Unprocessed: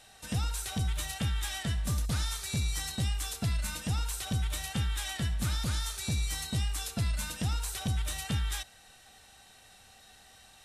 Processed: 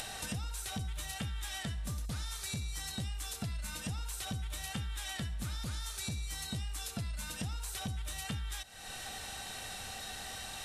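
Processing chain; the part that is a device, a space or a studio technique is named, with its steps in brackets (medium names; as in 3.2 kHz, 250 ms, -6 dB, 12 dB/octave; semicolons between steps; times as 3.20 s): upward and downward compression (upward compressor, threshold -36 dBFS; compression 6:1, threshold -40 dBFS, peak gain reduction 13 dB); trim +3.5 dB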